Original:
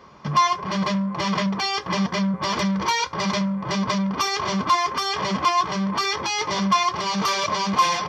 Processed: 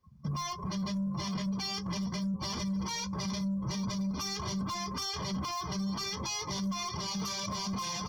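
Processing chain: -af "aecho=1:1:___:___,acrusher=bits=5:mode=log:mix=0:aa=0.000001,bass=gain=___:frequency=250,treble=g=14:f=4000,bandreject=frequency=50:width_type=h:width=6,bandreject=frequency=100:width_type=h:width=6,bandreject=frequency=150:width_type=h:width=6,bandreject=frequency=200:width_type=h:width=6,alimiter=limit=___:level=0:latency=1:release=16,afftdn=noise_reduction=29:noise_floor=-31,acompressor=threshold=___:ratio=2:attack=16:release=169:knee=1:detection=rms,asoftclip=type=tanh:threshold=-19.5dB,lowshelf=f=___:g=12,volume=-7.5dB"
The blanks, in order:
809, 0.251, 12, -10.5dB, -30dB, 67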